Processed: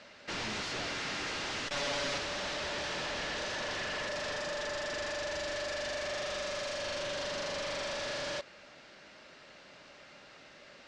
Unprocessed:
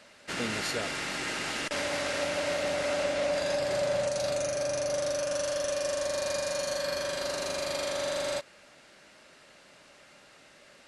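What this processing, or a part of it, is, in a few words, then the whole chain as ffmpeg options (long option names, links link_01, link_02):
synthesiser wavefolder: -filter_complex "[0:a]aeval=exprs='0.0224*(abs(mod(val(0)/0.0224+3,4)-2)-1)':channel_layout=same,lowpass=frequency=6000:width=0.5412,lowpass=frequency=6000:width=1.3066,asettb=1/sr,asplit=3[link_01][link_02][link_03];[link_01]atrim=end=1.674[link_04];[link_02]atrim=start=1.67:end=2.18,asetpts=PTS-STARTPTS,afade=type=in:duration=0.004:curve=qsin,afade=type=out:start_time=0.506:duration=0.004:curve=qsin,aecho=1:1:7.1:0.92,atrim=end_sample=22491[link_05];[link_03]atrim=start=2.176[link_06];[link_04][link_05]acrossfade=duration=0.004:curve1=hsin:curve2=qsin[link_07];[link_07][link_06]acrossfade=duration=0.004:curve1=qsin:curve2=hsin,volume=1.5dB"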